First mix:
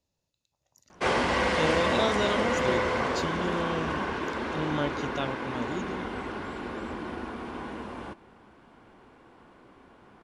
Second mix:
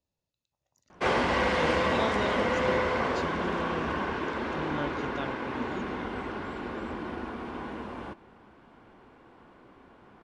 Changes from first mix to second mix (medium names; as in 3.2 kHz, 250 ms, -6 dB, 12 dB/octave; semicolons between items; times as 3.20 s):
speech -5.0 dB; master: add treble shelf 7.2 kHz -11 dB